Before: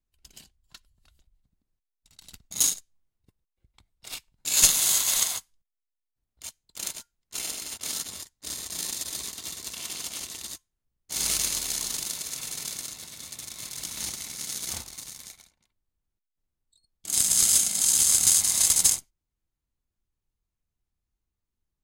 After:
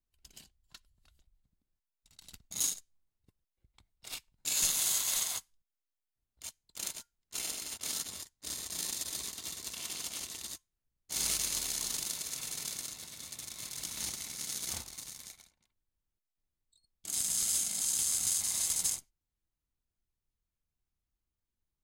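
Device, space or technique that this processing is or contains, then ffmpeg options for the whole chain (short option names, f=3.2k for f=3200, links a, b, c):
stacked limiters: -af "alimiter=limit=-10dB:level=0:latency=1:release=11,alimiter=limit=-14dB:level=0:latency=1:release=142,volume=-4.5dB"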